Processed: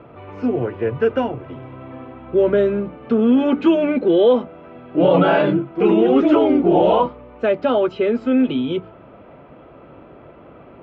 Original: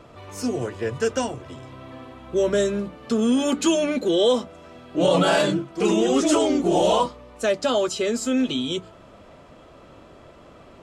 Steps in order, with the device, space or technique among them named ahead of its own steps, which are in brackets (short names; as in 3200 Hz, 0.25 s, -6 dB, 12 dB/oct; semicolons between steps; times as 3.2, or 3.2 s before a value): bass cabinet (speaker cabinet 63–2300 Hz, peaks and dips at 82 Hz -8 dB, 200 Hz -3 dB, 620 Hz -3 dB, 1100 Hz -5 dB, 1800 Hz -7 dB); gain +6.5 dB